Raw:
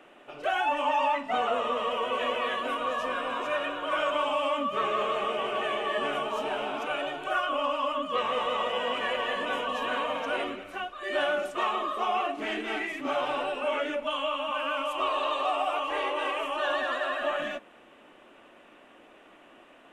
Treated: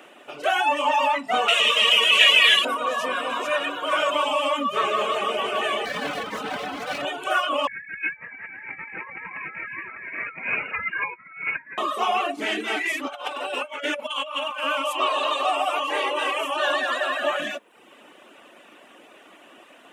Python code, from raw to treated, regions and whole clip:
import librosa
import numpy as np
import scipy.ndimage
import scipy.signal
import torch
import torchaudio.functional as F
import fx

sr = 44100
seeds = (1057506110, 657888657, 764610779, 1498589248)

y = fx.chain(x, sr, fx.highpass(hz=55.0, slope=12),
    fx.high_shelf_res(hz=1600.0, db=13.0, q=1.5),
    fx.notch_comb(f0_hz=250.0), at=(1.48, 2.65))
y = fx.chain(y, sr, fx.lower_of_two(delay_ms=3.9),
    fx.high_shelf(hz=2600.0, db=-8.0), at=(5.85, 7.05))
y = fx.chain(y, sr, fx.low_shelf(hz=380.0, db=-2.5),
    fx.over_compress(threshold_db=-37.0, ratio=-0.5),
    fx.freq_invert(carrier_hz=2800), at=(7.67, 11.78))
y = fx.chain(y, sr, fx.highpass(hz=380.0, slope=6),
    fx.over_compress(threshold_db=-34.0, ratio=-0.5), at=(12.8, 14.64))
y = scipy.signal.sosfilt(scipy.signal.butter(2, 150.0, 'highpass', fs=sr, output='sos'), y)
y = fx.high_shelf(y, sr, hz=4000.0, db=10.0)
y = fx.dereverb_blind(y, sr, rt60_s=0.64)
y = y * librosa.db_to_amplitude(5.5)